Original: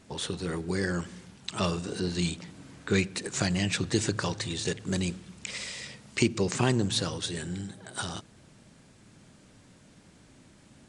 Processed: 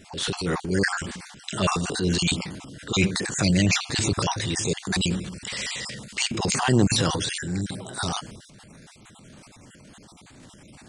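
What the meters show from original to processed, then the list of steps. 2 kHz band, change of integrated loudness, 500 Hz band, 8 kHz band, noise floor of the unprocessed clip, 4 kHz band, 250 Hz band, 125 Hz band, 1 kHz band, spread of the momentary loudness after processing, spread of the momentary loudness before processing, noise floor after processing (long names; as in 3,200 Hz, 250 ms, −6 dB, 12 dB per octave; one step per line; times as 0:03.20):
+6.5 dB, +5.5 dB, +3.0 dB, +7.5 dB, −57 dBFS, +7.0 dB, +5.0 dB, +5.5 dB, +8.0 dB, 11 LU, 12 LU, −51 dBFS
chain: time-frequency cells dropped at random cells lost 34%
transient designer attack −7 dB, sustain +7 dB
level +8.5 dB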